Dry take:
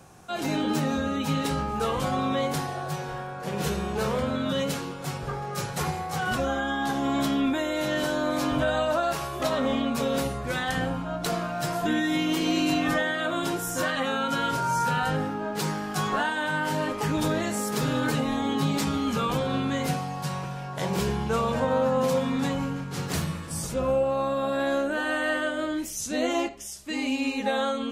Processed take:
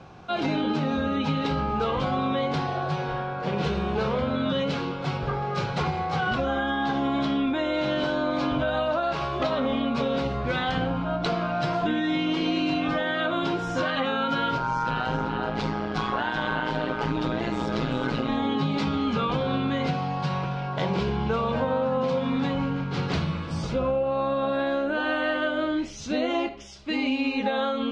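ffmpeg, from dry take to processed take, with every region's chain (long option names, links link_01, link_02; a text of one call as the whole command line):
ffmpeg -i in.wav -filter_complex "[0:a]asettb=1/sr,asplit=3[link_01][link_02][link_03];[link_01]atrim=end=14.584[link_04];[link_02]atrim=start=14.58:end=18.29,asetpts=PTS-STARTPTS,afade=type=in:duration=0.004:curve=qsin,afade=type=out:start_time=3.706:duration=0.004:curve=qsin,aecho=1:1:381:0.473,atrim=end_sample=163611,tremolo=f=120:d=0.788[link_05];[link_03]atrim=start=18.286[link_06];[link_04][link_05]acrossfade=duration=0.004:curve1=hsin:curve2=qsin[link_07];[link_07][link_06]acrossfade=duration=0.004:curve1=qsin:curve2=hsin,lowpass=frequency=4300:width=0.5412,lowpass=frequency=4300:width=1.3066,bandreject=frequency=1800:width=11,acompressor=threshold=-27dB:ratio=6,volume=5dB" out.wav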